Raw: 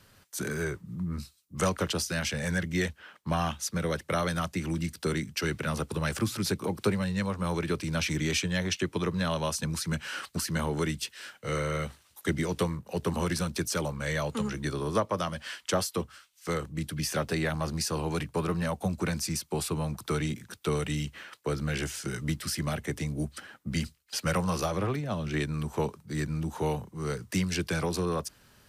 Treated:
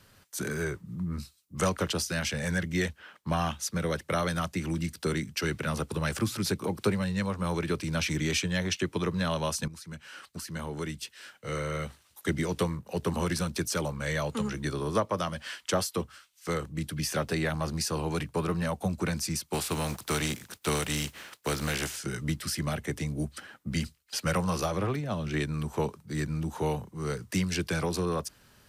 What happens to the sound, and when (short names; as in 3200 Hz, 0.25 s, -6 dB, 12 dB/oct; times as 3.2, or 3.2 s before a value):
9.68–12.45 fade in, from -14 dB
19.52–21.95 spectral contrast lowered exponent 0.61